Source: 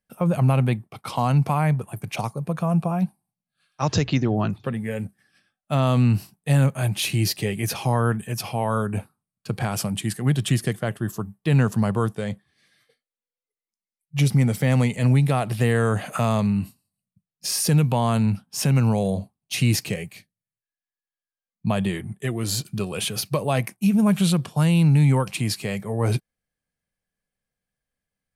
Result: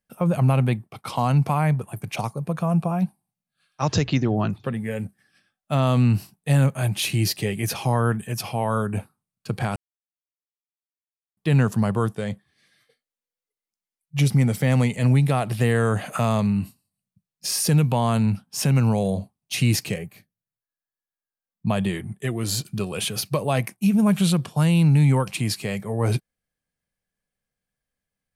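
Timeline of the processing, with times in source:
0:09.76–0:11.37: silence
0:19.98–0:21.68: flat-topped bell 4,500 Hz −8.5 dB 2.5 octaves

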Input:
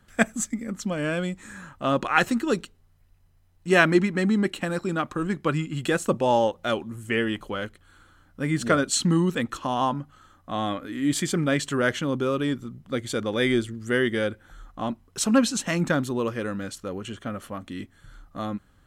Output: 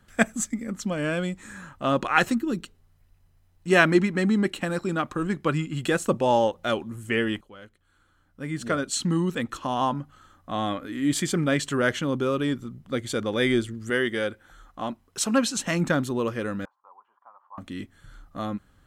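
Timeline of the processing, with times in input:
0:02.35–0:02.63: gain on a spectral selection 370–11,000 Hz −10 dB
0:07.41–0:10.00: fade in, from −18.5 dB
0:13.90–0:15.57: low-shelf EQ 250 Hz −7.5 dB
0:16.65–0:17.58: flat-topped band-pass 950 Hz, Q 4.1

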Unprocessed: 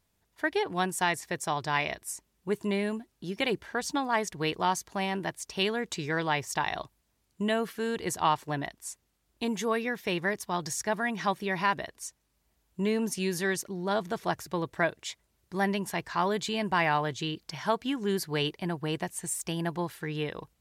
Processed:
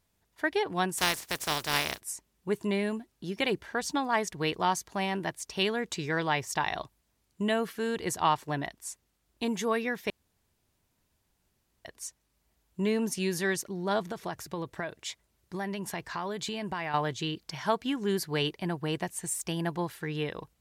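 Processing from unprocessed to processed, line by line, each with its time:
0:00.97–0:01.99: compressing power law on the bin magnitudes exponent 0.35
0:10.10–0:11.85: fill with room tone
0:14.09–0:16.94: downward compressor, threshold −30 dBFS

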